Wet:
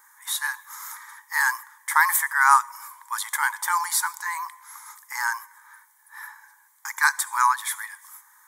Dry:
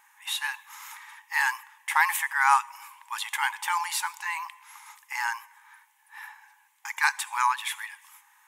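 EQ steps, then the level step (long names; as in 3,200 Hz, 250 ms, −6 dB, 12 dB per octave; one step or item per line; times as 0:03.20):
high-shelf EQ 8,800 Hz +5.5 dB
phaser with its sweep stopped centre 730 Hz, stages 6
+6.0 dB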